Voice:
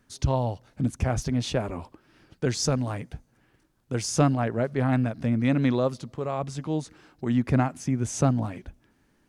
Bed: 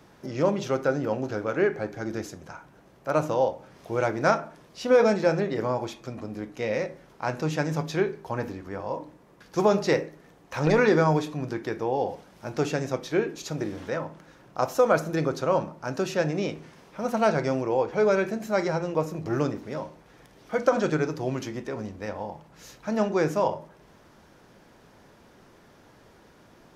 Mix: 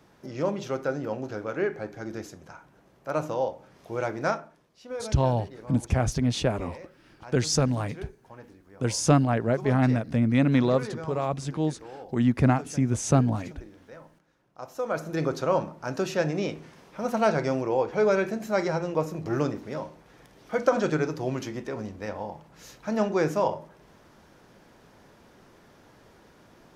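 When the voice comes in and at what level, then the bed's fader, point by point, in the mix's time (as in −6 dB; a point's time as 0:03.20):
4.90 s, +1.5 dB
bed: 0:04.25 −4 dB
0:04.82 −16.5 dB
0:14.54 −16.5 dB
0:15.24 −0.5 dB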